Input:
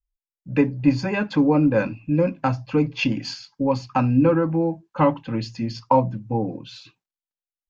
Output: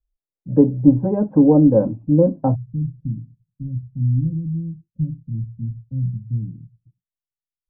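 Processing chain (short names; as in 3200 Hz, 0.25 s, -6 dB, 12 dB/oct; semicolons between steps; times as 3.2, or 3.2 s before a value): inverse Chebyshev low-pass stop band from 4100 Hz, stop band 80 dB, from 2.54 s stop band from 950 Hz; gain +5.5 dB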